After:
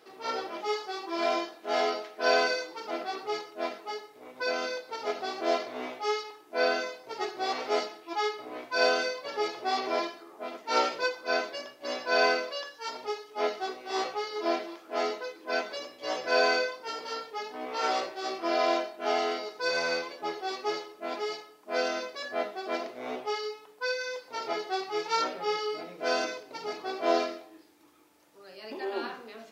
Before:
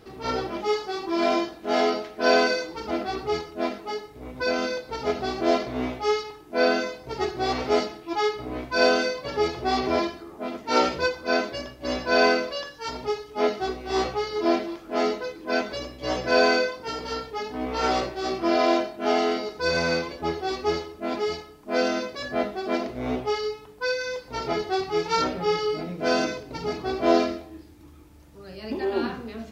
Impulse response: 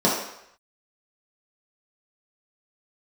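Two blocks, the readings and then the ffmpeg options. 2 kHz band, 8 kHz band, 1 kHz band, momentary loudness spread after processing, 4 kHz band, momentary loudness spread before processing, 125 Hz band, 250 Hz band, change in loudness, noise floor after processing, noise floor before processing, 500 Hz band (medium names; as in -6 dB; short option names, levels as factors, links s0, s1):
-3.5 dB, -3.5 dB, -4.0 dB, 11 LU, -3.5 dB, 11 LU, under -20 dB, -11.5 dB, -5.5 dB, -54 dBFS, -47 dBFS, -6.0 dB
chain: -af "highpass=460,volume=0.668"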